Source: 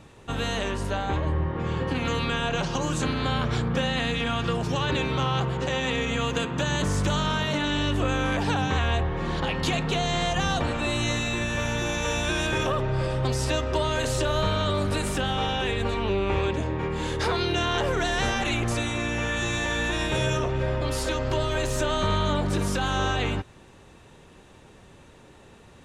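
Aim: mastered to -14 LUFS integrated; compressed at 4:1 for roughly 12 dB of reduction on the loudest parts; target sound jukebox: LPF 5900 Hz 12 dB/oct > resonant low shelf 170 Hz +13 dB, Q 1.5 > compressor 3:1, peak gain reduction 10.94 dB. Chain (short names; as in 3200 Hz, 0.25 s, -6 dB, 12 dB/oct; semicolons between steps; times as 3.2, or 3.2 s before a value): compressor 4:1, threshold -36 dBFS; LPF 5900 Hz 12 dB/oct; resonant low shelf 170 Hz +13 dB, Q 1.5; compressor 3:1, threshold -34 dBFS; gain +23 dB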